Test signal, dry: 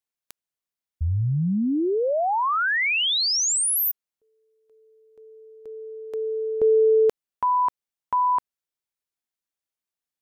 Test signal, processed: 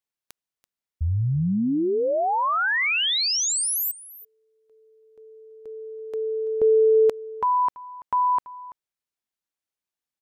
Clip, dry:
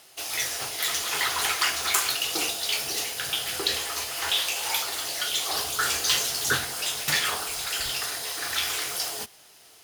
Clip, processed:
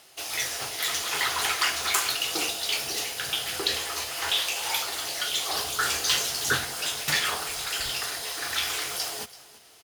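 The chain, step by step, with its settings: treble shelf 8 kHz -3.5 dB; on a send: delay 334 ms -18.5 dB

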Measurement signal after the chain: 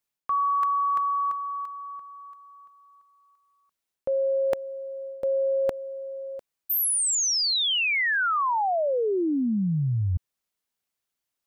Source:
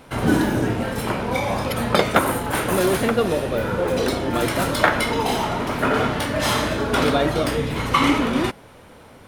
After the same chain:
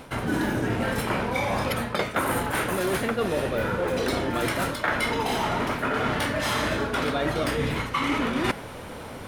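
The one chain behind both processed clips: dynamic bell 1.8 kHz, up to +4 dB, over -38 dBFS, Q 1.1; reverse; compression 12:1, threshold -30 dBFS; reverse; trim +7.5 dB

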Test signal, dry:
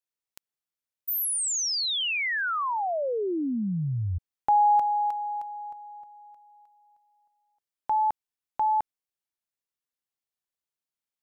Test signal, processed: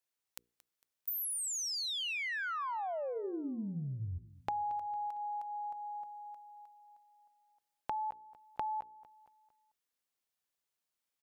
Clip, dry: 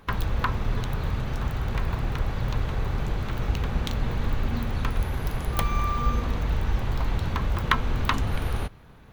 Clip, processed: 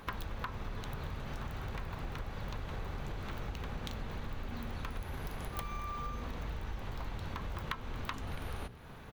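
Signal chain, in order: bass shelf 150 Hz -4.5 dB; hum notches 60/120/180/240/300/360/420/480 Hz; compression 5:1, threshold -41 dBFS; on a send: feedback delay 227 ms, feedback 46%, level -19 dB; on the sum: trim +3 dB

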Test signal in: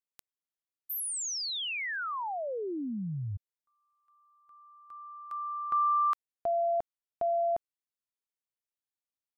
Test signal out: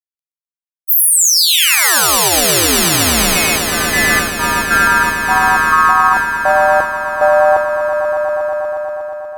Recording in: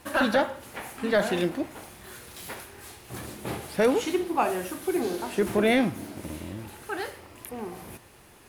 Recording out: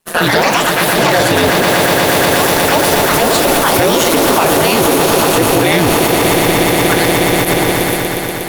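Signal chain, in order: ring modulator 83 Hz; treble shelf 3 kHz +10 dB; ever faster or slower copies 164 ms, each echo +4 st, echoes 3; echo with a slow build-up 120 ms, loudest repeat 8, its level -11.5 dB; expander -27 dBFS, range -37 dB; loudness maximiser +21.5 dB; trim -1 dB

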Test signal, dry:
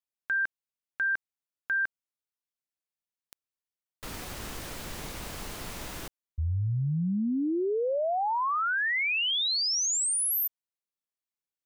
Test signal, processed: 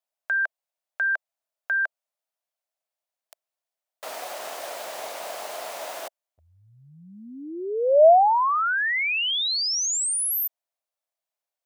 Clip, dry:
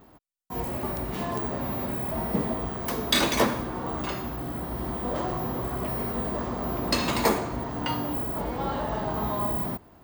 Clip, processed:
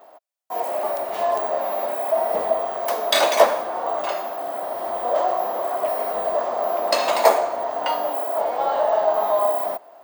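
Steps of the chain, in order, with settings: resonant high-pass 640 Hz, resonance Q 4.9; trim +2.5 dB

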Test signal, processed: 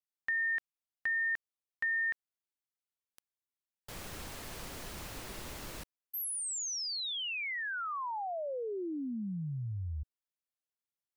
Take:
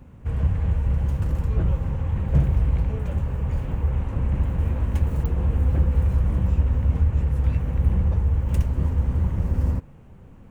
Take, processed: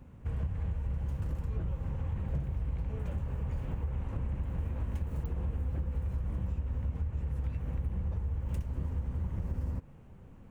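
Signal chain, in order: compression, threshold -24 dBFS; trim -6 dB

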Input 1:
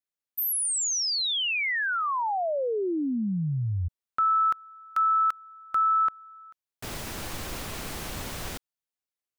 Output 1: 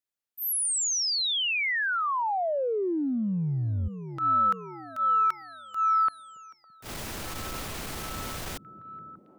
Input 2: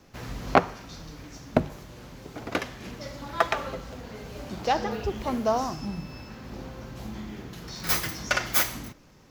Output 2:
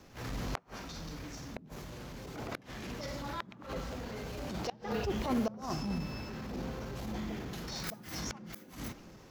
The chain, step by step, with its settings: inverted gate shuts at -15 dBFS, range -38 dB; repeats whose band climbs or falls 614 ms, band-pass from 160 Hz, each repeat 0.7 oct, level -11 dB; transient shaper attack -12 dB, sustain +1 dB

